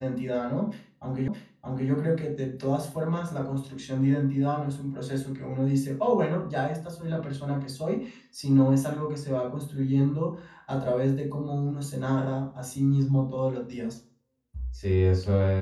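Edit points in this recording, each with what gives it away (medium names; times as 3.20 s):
1.28 s: repeat of the last 0.62 s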